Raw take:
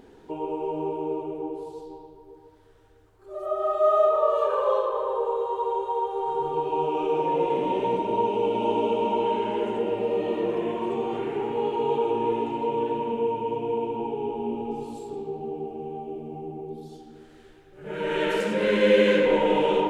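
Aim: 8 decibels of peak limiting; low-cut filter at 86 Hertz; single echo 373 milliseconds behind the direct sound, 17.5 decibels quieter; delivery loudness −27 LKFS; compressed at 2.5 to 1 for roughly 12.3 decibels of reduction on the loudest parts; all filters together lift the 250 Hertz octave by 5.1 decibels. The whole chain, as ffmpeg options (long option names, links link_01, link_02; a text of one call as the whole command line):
ffmpeg -i in.wav -af "highpass=86,equalizer=frequency=250:width_type=o:gain=7,acompressor=threshold=-32dB:ratio=2.5,alimiter=level_in=1.5dB:limit=-24dB:level=0:latency=1,volume=-1.5dB,aecho=1:1:373:0.133,volume=7.5dB" out.wav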